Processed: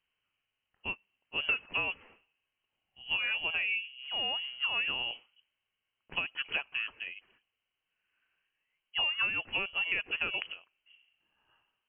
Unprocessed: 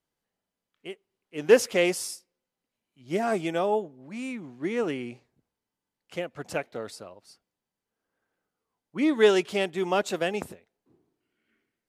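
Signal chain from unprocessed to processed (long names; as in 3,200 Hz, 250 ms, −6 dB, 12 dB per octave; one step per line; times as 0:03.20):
downward compressor 12 to 1, threshold −31 dBFS, peak gain reduction 20 dB
voice inversion scrambler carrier 3,100 Hz
level +2.5 dB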